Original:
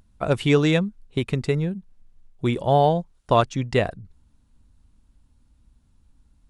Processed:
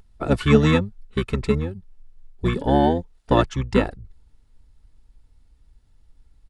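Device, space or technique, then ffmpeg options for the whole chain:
octave pedal: -filter_complex "[0:a]aecho=1:1:2.3:0.45,asplit=2[link_01][link_02];[link_02]asetrate=22050,aresample=44100,atempo=2,volume=0dB[link_03];[link_01][link_03]amix=inputs=2:normalize=0,volume=-2dB"

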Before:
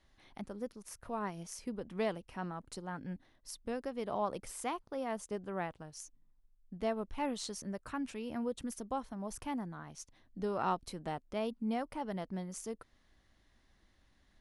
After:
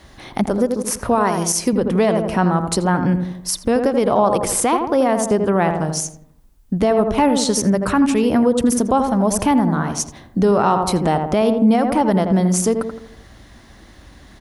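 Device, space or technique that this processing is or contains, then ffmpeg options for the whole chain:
mastering chain: -filter_complex "[0:a]asettb=1/sr,asplit=3[link_01][link_02][link_03];[link_01]atrim=end=1.154[link_04];[link_02]atrim=start=1.15:end=1.73,asetpts=PTS-STARTPTS,afade=type=in:duration=0.004:curve=qsin,afade=type=out:start_time=0.576:duration=0.004:curve=qsin,bass=frequency=250:gain=-8,treble=frequency=4000:gain=5[link_05];[link_03]atrim=start=1.726[link_06];[link_04][link_05]acrossfade=duration=0.004:curve1=hsin:curve2=qsin[link_07];[link_07][link_06]acrossfade=duration=0.004:curve1=qsin:curve2=hsin,highpass=45,equalizer=frequency=2700:width_type=o:width=2.2:gain=-3.5,asplit=2[link_08][link_09];[link_09]adelay=83,lowpass=frequency=1200:poles=1,volume=-6.5dB,asplit=2[link_10][link_11];[link_11]adelay=83,lowpass=frequency=1200:poles=1,volume=0.48,asplit=2[link_12][link_13];[link_13]adelay=83,lowpass=frequency=1200:poles=1,volume=0.48,asplit=2[link_14][link_15];[link_15]adelay=83,lowpass=frequency=1200:poles=1,volume=0.48,asplit=2[link_16][link_17];[link_17]adelay=83,lowpass=frequency=1200:poles=1,volume=0.48,asplit=2[link_18][link_19];[link_19]adelay=83,lowpass=frequency=1200:poles=1,volume=0.48[link_20];[link_08][link_10][link_12][link_14][link_16][link_18][link_20]amix=inputs=7:normalize=0,acompressor=threshold=-41dB:ratio=2,alimiter=level_in=32dB:limit=-1dB:release=50:level=0:latency=1,volume=-5dB"

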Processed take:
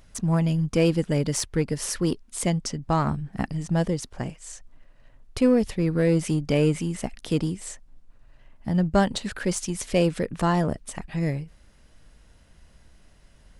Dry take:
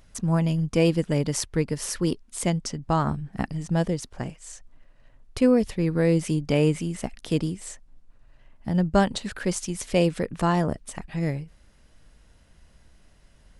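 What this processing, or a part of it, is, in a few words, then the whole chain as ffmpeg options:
parallel distortion: -filter_complex "[0:a]asplit=2[link_01][link_02];[link_02]asoftclip=type=hard:threshold=-24dB,volume=-8dB[link_03];[link_01][link_03]amix=inputs=2:normalize=0,volume=-1.5dB"

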